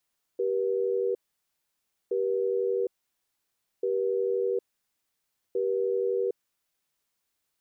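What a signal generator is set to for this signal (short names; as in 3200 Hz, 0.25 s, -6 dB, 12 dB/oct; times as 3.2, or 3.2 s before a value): cadence 389 Hz, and 481 Hz, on 0.76 s, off 0.96 s, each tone -27 dBFS 6.18 s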